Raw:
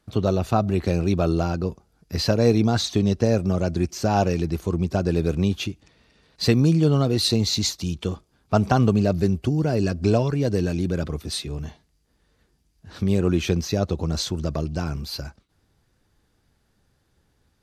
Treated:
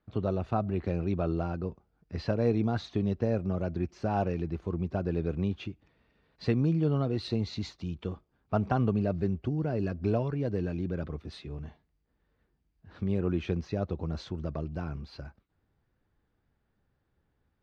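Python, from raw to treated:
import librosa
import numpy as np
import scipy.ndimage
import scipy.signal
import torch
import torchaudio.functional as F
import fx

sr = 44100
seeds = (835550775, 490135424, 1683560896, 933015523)

y = scipy.signal.sosfilt(scipy.signal.butter(2, 2400.0, 'lowpass', fs=sr, output='sos'), x)
y = y * librosa.db_to_amplitude(-8.5)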